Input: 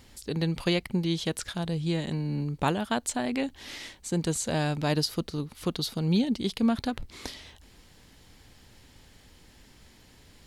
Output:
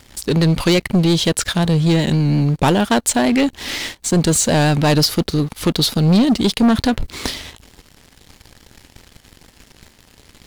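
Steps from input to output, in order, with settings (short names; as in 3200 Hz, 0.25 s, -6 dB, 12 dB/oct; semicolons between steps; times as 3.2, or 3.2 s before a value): vibrato 5.6 Hz 44 cents; sample leveller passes 3; gain +5 dB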